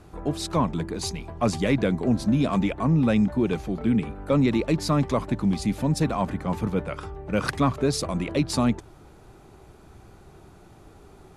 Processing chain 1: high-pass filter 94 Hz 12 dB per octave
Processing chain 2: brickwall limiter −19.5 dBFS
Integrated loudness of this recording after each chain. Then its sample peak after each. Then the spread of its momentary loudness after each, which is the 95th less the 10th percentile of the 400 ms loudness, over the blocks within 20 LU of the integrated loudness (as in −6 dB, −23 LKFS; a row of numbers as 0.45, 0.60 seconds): −25.0, −29.5 LKFS; −11.0, −19.5 dBFS; 8, 5 LU